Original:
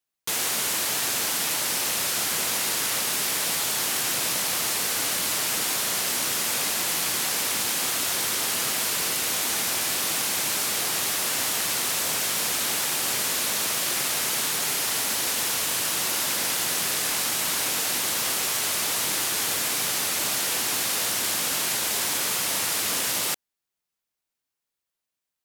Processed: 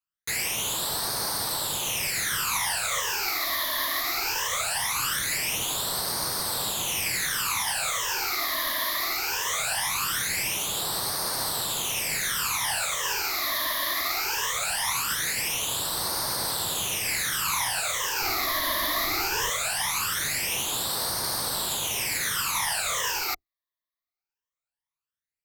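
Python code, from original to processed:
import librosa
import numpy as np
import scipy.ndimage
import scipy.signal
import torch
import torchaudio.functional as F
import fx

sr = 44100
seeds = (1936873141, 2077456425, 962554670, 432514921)

y = fx.octave_divider(x, sr, octaves=1, level_db=-3.0)
y = fx.graphic_eq(y, sr, hz=(250, 1000, 2000), db=(-6, 7, 4))
y = fx.phaser_stages(y, sr, stages=12, low_hz=140.0, high_hz=2500.0, hz=0.2, feedback_pct=45)
y = fx.low_shelf(y, sr, hz=440.0, db=10.0, at=(18.2, 19.5))
y = fx.upward_expand(y, sr, threshold_db=-41.0, expansion=1.5)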